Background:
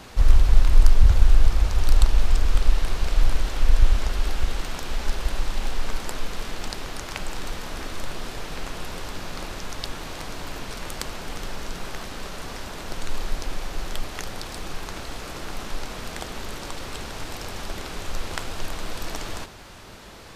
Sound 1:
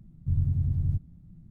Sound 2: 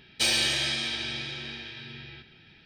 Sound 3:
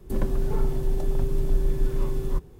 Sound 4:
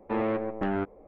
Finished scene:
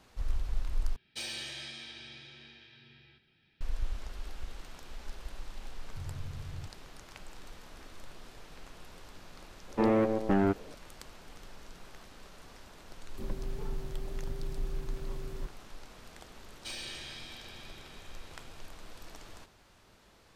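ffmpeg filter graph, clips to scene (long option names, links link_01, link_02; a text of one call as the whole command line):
ffmpeg -i bed.wav -i cue0.wav -i cue1.wav -i cue2.wav -i cue3.wav -filter_complex "[2:a]asplit=2[link_01][link_02];[0:a]volume=-17.5dB[link_03];[4:a]lowshelf=frequency=410:gain=6[link_04];[link_03]asplit=2[link_05][link_06];[link_05]atrim=end=0.964[link_07];[link_01]atrim=end=2.65,asetpts=PTS-STARTPTS,volume=-15dB[link_08];[link_06]atrim=start=3.606[link_09];[1:a]atrim=end=1.5,asetpts=PTS-STARTPTS,volume=-16dB,afade=type=in:duration=0.004:curve=hsin,afade=type=out:start_time=1.496:duration=0.004:curve=hsin,adelay=250929S[link_10];[link_04]atrim=end=1.07,asetpts=PTS-STARTPTS,volume=-1dB,afade=type=in:duration=0.004:curve=hsin,afade=type=out:start_time=1.066:duration=0.004:curve=hsin,adelay=9680[link_11];[3:a]atrim=end=2.59,asetpts=PTS-STARTPTS,volume=-13dB,afade=type=in:duration=0.004:curve=hsin,afade=type=out:start_time=2.586:duration=0.004:curve=hsin,adelay=13080[link_12];[link_02]atrim=end=2.65,asetpts=PTS-STARTPTS,volume=-17.5dB,afade=type=in:duration=0.004:curve=hsin,afade=type=out:start_time=2.646:duration=0.004:curve=hsin,adelay=16450[link_13];[link_07][link_08]acrossfade=duration=0.004:curve1=hsin:curve2=hsin[link_14];[link_14][link_09]acrossfade=duration=0.004:curve1=hsin:curve2=hsin[link_15];[link_15][link_10][link_11][link_12][link_13]amix=inputs=5:normalize=0" out.wav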